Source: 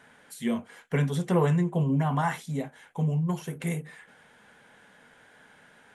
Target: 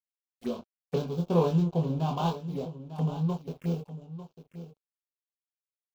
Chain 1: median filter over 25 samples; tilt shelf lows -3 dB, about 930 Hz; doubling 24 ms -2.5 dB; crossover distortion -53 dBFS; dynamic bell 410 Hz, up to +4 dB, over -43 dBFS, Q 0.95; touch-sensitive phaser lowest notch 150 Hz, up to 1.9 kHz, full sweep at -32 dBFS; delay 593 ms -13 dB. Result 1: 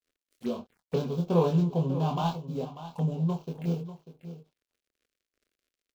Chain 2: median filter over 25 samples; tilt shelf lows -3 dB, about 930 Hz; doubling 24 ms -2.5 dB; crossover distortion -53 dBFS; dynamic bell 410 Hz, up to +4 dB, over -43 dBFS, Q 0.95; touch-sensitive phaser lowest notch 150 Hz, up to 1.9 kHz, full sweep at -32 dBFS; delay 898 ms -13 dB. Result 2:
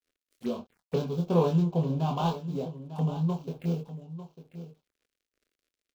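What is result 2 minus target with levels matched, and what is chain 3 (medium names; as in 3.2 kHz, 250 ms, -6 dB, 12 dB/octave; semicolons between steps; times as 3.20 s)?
crossover distortion: distortion -7 dB
median filter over 25 samples; tilt shelf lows -3 dB, about 930 Hz; doubling 24 ms -2.5 dB; crossover distortion -44 dBFS; dynamic bell 410 Hz, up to +4 dB, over -43 dBFS, Q 0.95; touch-sensitive phaser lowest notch 150 Hz, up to 1.9 kHz, full sweep at -32 dBFS; delay 898 ms -13 dB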